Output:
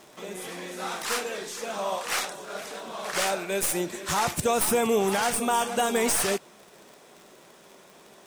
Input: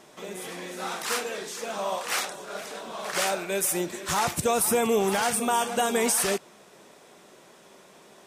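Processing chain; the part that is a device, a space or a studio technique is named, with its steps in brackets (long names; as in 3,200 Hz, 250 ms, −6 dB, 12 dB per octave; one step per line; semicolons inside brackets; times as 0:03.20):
record under a worn stylus (stylus tracing distortion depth 0.026 ms; surface crackle 62 per second −39 dBFS; white noise bed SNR 41 dB)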